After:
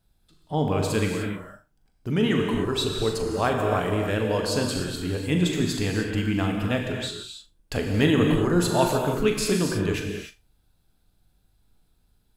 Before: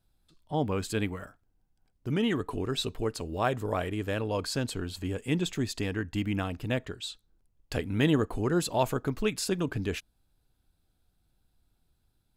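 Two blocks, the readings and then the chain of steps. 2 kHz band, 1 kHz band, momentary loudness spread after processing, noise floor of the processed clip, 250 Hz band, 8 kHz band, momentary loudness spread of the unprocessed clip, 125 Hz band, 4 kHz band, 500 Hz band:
+6.0 dB, +6.0 dB, 11 LU, -67 dBFS, +6.5 dB, +6.5 dB, 8 LU, +6.0 dB, +6.0 dB, +6.5 dB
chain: on a send: flutter echo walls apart 6.9 m, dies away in 0.22 s; on the sum: non-linear reverb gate 0.33 s flat, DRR 1.5 dB; gain +3.5 dB

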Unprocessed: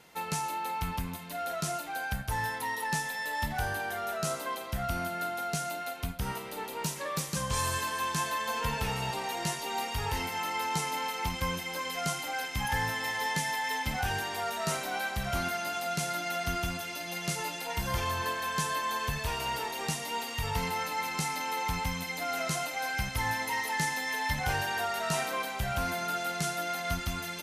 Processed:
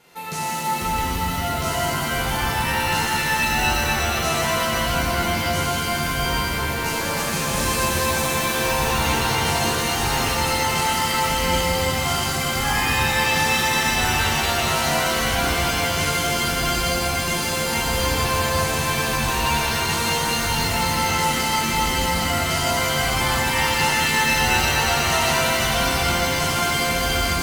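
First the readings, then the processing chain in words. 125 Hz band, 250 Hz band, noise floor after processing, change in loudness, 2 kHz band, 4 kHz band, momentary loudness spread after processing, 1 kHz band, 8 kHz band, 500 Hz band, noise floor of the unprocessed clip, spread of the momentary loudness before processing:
+11.0 dB, +12.5 dB, -24 dBFS, +12.0 dB, +11.5 dB, +14.5 dB, 4 LU, +10.0 dB, +13.0 dB, +12.0 dB, -39 dBFS, 4 LU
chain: shimmer reverb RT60 3.9 s, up +7 st, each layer -2 dB, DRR -8.5 dB

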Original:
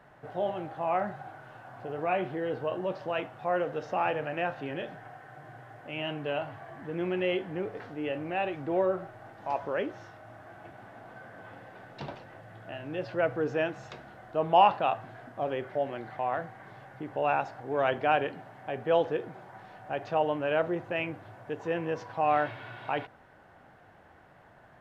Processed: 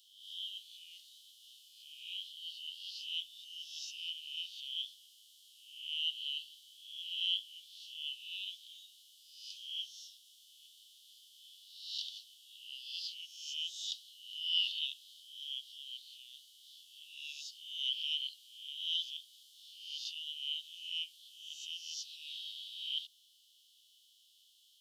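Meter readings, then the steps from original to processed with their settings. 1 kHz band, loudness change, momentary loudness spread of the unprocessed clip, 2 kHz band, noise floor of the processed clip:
under -40 dB, -8.5 dB, 21 LU, -15.0 dB, -67 dBFS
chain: spectral swells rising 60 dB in 0.80 s; Chebyshev high-pass 3000 Hz, order 8; gain +11 dB

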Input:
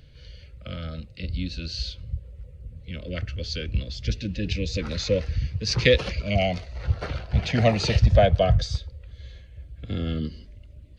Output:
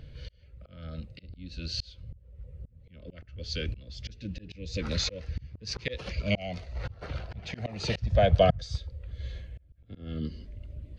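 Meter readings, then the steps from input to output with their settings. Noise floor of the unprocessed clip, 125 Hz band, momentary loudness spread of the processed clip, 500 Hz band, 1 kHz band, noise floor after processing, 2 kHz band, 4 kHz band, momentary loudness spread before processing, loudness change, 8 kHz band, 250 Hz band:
-48 dBFS, -8.0 dB, 23 LU, -6.0 dB, -4.0 dB, -57 dBFS, -8.5 dB, -6.0 dB, 23 LU, -6.5 dB, n/a, -7.5 dB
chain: auto swell 0.751 s; mismatched tape noise reduction decoder only; gain +4.5 dB

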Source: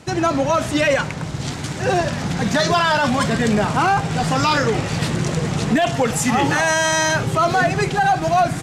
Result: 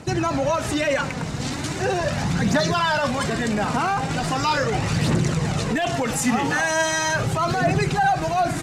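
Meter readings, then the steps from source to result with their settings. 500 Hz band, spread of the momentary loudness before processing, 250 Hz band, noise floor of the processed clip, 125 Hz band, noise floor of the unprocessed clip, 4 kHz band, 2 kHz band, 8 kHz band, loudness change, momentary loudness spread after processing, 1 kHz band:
-4.0 dB, 5 LU, -3.0 dB, -28 dBFS, -2.0 dB, -28 dBFS, -3.5 dB, -3.5 dB, -3.0 dB, -3.5 dB, 4 LU, -4.0 dB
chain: notch 3300 Hz, Q 22; limiter -15 dBFS, peak gain reduction 5.5 dB; phaser 0.39 Hz, delay 4.5 ms, feedback 40%

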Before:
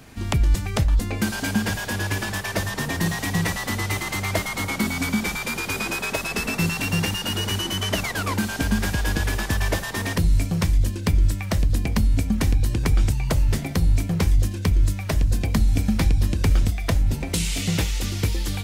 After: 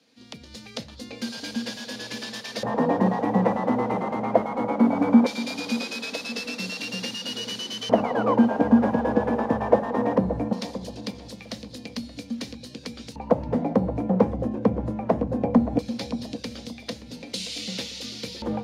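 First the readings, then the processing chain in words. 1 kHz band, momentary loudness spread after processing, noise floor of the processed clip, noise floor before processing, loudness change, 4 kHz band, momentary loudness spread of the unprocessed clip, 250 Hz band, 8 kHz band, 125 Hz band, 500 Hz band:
+4.0 dB, 17 LU, -45 dBFS, -31 dBFS, -1.5 dB, -4.0 dB, 4 LU, +3.5 dB, -11.0 dB, -11.5 dB, +7.0 dB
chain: frequency shift +19 Hz; AGC; tilt shelf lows +5.5 dB, about 720 Hz; notches 50/100/150 Hz; LFO band-pass square 0.19 Hz 870–4300 Hz; notch 7800 Hz, Q 14; small resonant body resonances 240/480 Hz, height 17 dB, ringing for 35 ms; on a send: darkening echo 0.575 s, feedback 31%, low-pass 1600 Hz, level -12 dB; on the sum: gain -2 dB

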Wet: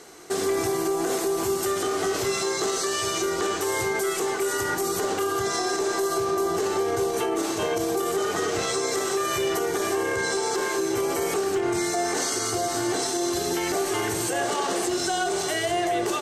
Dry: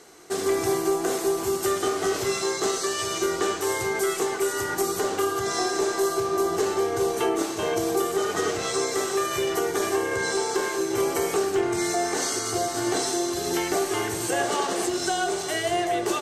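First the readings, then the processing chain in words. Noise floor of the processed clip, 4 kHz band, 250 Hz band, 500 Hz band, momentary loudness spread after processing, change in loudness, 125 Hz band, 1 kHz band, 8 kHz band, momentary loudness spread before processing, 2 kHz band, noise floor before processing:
-28 dBFS, +0.5 dB, 0.0 dB, -0.5 dB, 1 LU, 0.0 dB, +0.5 dB, 0.0 dB, +0.5 dB, 2 LU, +0.5 dB, -31 dBFS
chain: limiter -20.5 dBFS, peak gain reduction 9 dB; gain +3.5 dB

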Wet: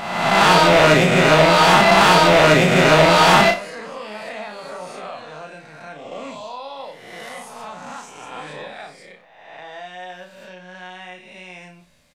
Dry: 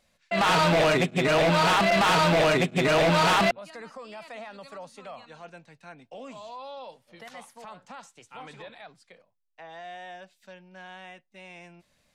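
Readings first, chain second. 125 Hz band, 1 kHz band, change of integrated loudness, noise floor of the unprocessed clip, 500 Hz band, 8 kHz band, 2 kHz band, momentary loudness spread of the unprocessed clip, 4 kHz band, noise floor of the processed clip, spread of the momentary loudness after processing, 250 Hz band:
+8.0 dB, +9.5 dB, +9.0 dB, -71 dBFS, +9.0 dB, +10.0 dB, +10.0 dB, 21 LU, +9.5 dB, -47 dBFS, 20 LU, +8.0 dB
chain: spectral swells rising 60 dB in 1.25 s; doubler 33 ms -4.5 dB; flutter echo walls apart 9.8 m, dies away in 0.29 s; gain +4.5 dB

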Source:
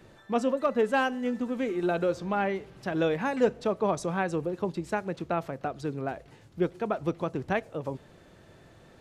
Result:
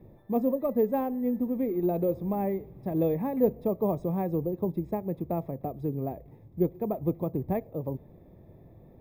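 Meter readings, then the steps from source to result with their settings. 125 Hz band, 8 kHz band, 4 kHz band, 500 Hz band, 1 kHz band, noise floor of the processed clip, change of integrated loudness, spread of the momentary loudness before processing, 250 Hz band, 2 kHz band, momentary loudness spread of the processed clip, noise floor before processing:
+3.5 dB, under -20 dB, under -20 dB, -0.5 dB, -5.0 dB, -54 dBFS, 0.0 dB, 9 LU, +2.5 dB, under -15 dB, 8 LU, -55 dBFS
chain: running mean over 30 samples; low shelf 260 Hz +5.5 dB; careless resampling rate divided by 3×, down none, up hold

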